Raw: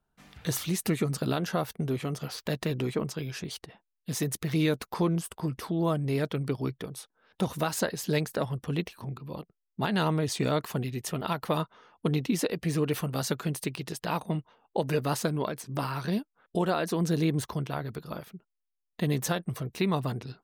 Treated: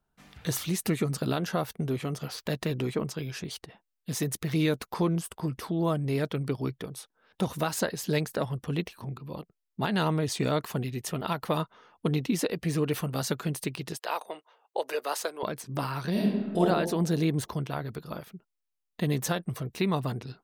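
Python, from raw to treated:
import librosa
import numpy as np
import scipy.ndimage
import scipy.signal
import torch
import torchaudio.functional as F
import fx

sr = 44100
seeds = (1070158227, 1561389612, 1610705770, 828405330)

y = fx.highpass(x, sr, hz=440.0, slope=24, at=(13.97, 15.43))
y = fx.reverb_throw(y, sr, start_s=16.11, length_s=0.49, rt60_s=1.3, drr_db=-5.5)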